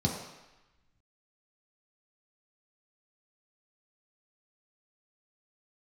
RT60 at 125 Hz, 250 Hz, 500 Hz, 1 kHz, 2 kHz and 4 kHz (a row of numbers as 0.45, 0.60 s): 0.85, 0.85, 0.95, 1.1, 1.2, 1.0 s